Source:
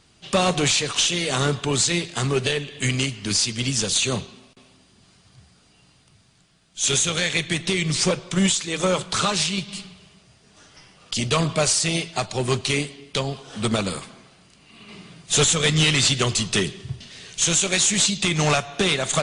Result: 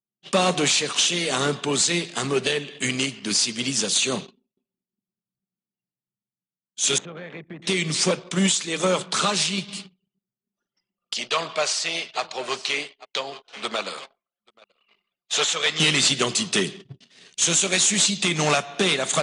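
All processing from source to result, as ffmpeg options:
ffmpeg -i in.wav -filter_complex "[0:a]asettb=1/sr,asplit=3[link_01][link_02][link_03];[link_01]atrim=end=6.984[link_04];[link_02]atrim=start=6.98:end=7.62,asetpts=PTS-STARTPTS,afade=type=in:duration=0.004:curve=qsin,afade=type=out:start_time=0.636:duration=0.004:curve=qsin,lowpass=1300,acompressor=threshold=-33dB:ratio=4:attack=3.2:release=140:knee=1:detection=peak[link_05];[link_03]atrim=start=7.616[link_06];[link_04][link_05]acrossfade=duration=0.004:curve1=hsin:curve2=qsin[link_07];[link_07][link_06]acrossfade=duration=0.004:curve1=qsin:curve2=hsin,asettb=1/sr,asplit=3[link_08][link_09][link_10];[link_08]atrim=end=11.144[link_11];[link_09]atrim=start=11.14:end=15.8,asetpts=PTS-STARTPTS,afade=type=in:duration=0.004:curve=qsin,afade=type=out:start_time=4.656:duration=0.004:curve=qsin,acrossover=split=480 6400:gain=0.126 1 0.112[link_12][link_13][link_14];[link_12][link_13][link_14]amix=inputs=3:normalize=0,aecho=1:1:831:0.15,atrim=end_sample=205506[link_15];[link_10]atrim=start=15.796[link_16];[link_11][link_15]acrossfade=duration=0.004:curve1=hsin:curve2=qsin[link_17];[link_17][link_16]acrossfade=duration=0.004:curve1=qsin:curve2=hsin,highpass=frequency=170:width=0.5412,highpass=frequency=170:width=1.3066,anlmdn=0.158,agate=range=-12dB:threshold=-40dB:ratio=16:detection=peak" out.wav

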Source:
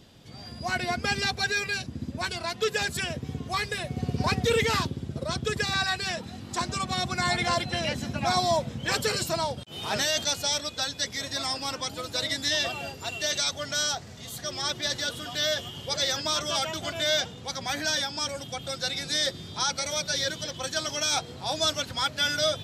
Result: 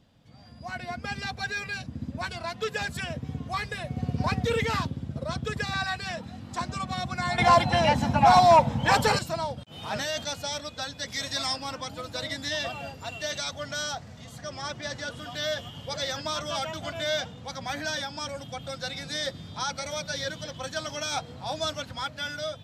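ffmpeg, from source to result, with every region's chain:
ffmpeg -i in.wav -filter_complex "[0:a]asettb=1/sr,asplit=3[link_01][link_02][link_03];[link_01]atrim=end=7.384[link_04];[link_02]atrim=start=7.38:end=9.19,asetpts=PTS-STARTPTS,afade=type=in:duration=0.004:curve=qsin,afade=type=out:start_time=1.806:duration=0.004:curve=qsin,equalizer=frequency=880:width=4.1:gain=15,aeval=exprs='0.335*sin(PI/2*1.58*val(0)/0.335)':channel_layout=same[link_05];[link_03]atrim=start=9.186[link_06];[link_04][link_05]acrossfade=duration=0.004:curve1=hsin:curve2=qsin[link_07];[link_07][link_06]acrossfade=duration=0.004:curve1=qsin:curve2=hsin,asettb=1/sr,asplit=3[link_08][link_09][link_10];[link_08]atrim=end=11.084[link_11];[link_09]atrim=start=11.08:end=11.56,asetpts=PTS-STARTPTS,afade=type=in:duration=0.004:curve=qsin,afade=type=out:start_time=0.476:duration=0.004:curve=qsin,acrossover=split=8200[link_12][link_13];[link_13]acompressor=threshold=-49dB:ratio=4:attack=1:release=60[link_14];[link_12][link_14]amix=inputs=2:normalize=0,highshelf=frequency=2500:gain=10.5[link_15];[link_10]atrim=start=11.556[link_16];[link_11][link_15]acrossfade=duration=0.004:curve1=hsin:curve2=qsin[link_17];[link_17][link_16]acrossfade=duration=0.004:curve1=qsin:curve2=hsin,asettb=1/sr,asplit=3[link_18][link_19][link_20];[link_18]atrim=end=14.244[link_21];[link_19]atrim=start=14.24:end=15.19,asetpts=PTS-STARTPTS,afade=type=in:duration=0.004:curve=qsin,afade=type=out:start_time=0.946:duration=0.004:curve=qsin,lowpass=8800,equalizer=frequency=3700:width_type=o:width=0.48:gain=-6[link_22];[link_20]atrim=start=15.186[link_23];[link_21][link_22]acrossfade=duration=0.004:curve1=hsin:curve2=qsin[link_24];[link_24][link_23]acrossfade=duration=0.004:curve1=qsin:curve2=hsin,highshelf=frequency=2700:gain=-9.5,dynaudnorm=framelen=520:gausssize=5:maxgain=7dB,equalizer=frequency=380:width=4.7:gain=-12,volume=-6.5dB" out.wav

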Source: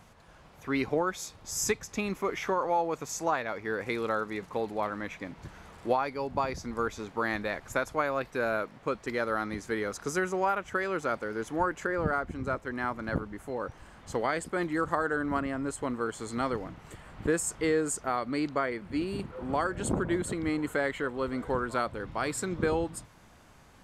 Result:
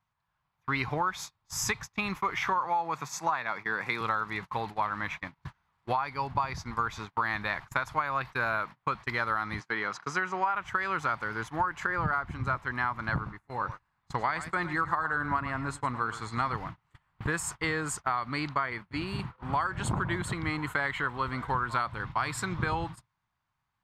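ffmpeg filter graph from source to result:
ffmpeg -i in.wav -filter_complex "[0:a]asettb=1/sr,asplit=3[link_01][link_02][link_03];[link_01]atrim=end=2.654[link_04];[link_02]atrim=start=2.65:end=4.01,asetpts=PTS-STARTPTS,afade=type=in:duration=0.004:curve=qsin,afade=type=out:start_time=1.356:duration=0.004:curve=qsin,highpass=frequency=140:width=0.5412,highpass=frequency=140:width=1.3066,bandreject=frequency=3000:width=12[link_05];[link_03]atrim=start=4.006[link_06];[link_04][link_05]acrossfade=duration=0.004:curve1=hsin:curve2=qsin[link_07];[link_07][link_06]acrossfade=duration=0.004:curve1=qsin:curve2=hsin,asettb=1/sr,asplit=3[link_08][link_09][link_10];[link_08]atrim=end=9.604[link_11];[link_09]atrim=start=9.6:end=10.55,asetpts=PTS-STARTPTS,afade=type=in:duration=0.004:curve=qsin,afade=type=out:start_time=0.946:duration=0.004:curve=qsin,highpass=190,lowpass=5500,bandreject=frequency=3600:width=17[link_12];[link_10]atrim=start=10.546[link_13];[link_11][link_12]acrossfade=duration=0.004:curve1=hsin:curve2=qsin[link_14];[link_14][link_13]acrossfade=duration=0.004:curve1=qsin:curve2=hsin,asettb=1/sr,asplit=3[link_15][link_16][link_17];[link_15]atrim=end=13.154[link_18];[link_16]atrim=start=13.15:end=16.54,asetpts=PTS-STARTPTS,afade=type=in:duration=0.004:curve=qsin,afade=type=out:start_time=3.386:duration=0.004:curve=qsin,highshelf=frequency=12000:gain=-8.5,bandreject=frequency=3100:width=11,aecho=1:1:108:0.2,atrim=end_sample=149499[link_19];[link_17]atrim=start=16.536[link_20];[link_18][link_19]acrossfade=duration=0.004:curve1=hsin:curve2=qsin[link_21];[link_21][link_20]acrossfade=duration=0.004:curve1=qsin:curve2=hsin,equalizer=frequency=125:width_type=o:width=1:gain=9,equalizer=frequency=250:width_type=o:width=1:gain=-5,equalizer=frequency=500:width_type=o:width=1:gain=-10,equalizer=frequency=1000:width_type=o:width=1:gain=11,equalizer=frequency=2000:width_type=o:width=1:gain=4,equalizer=frequency=4000:width_type=o:width=1:gain=5,equalizer=frequency=8000:width_type=o:width=1:gain=-4,agate=range=-30dB:threshold=-37dB:ratio=16:detection=peak,acompressor=threshold=-25dB:ratio=6" out.wav

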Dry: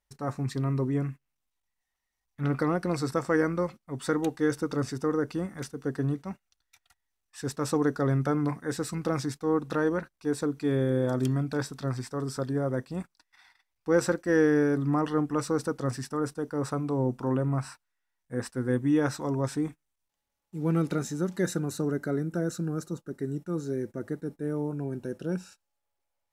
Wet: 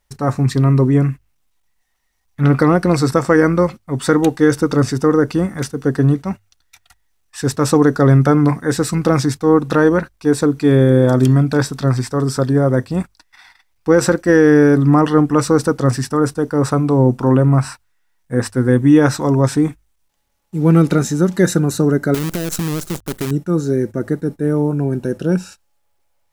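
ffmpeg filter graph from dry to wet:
ffmpeg -i in.wav -filter_complex "[0:a]asettb=1/sr,asplit=3[link_01][link_02][link_03];[link_01]atrim=end=22.144[link_04];[link_02]atrim=start=22.14:end=23.31,asetpts=PTS-STARTPTS,afade=type=in:duration=0.004:curve=qsin,afade=type=out:start_time=1.166:duration=0.004:curve=qsin,acompressor=threshold=-31dB:ratio=16:attack=3.2:release=140:knee=1:detection=peak,acrusher=bits=7:dc=4:mix=0:aa=0.000001,highshelf=frequency=6500:gain=9[link_05];[link_03]atrim=start=23.306[link_06];[link_04][link_05]acrossfade=duration=0.004:curve1=hsin:curve2=qsin[link_07];[link_07][link_06]acrossfade=duration=0.004:curve1=qsin:curve2=hsin,lowshelf=frequency=110:gain=6,bandreject=frequency=50:width_type=h:width=6,bandreject=frequency=100:width_type=h:width=6,alimiter=level_in=14.5dB:limit=-1dB:release=50:level=0:latency=1,volume=-1dB" out.wav

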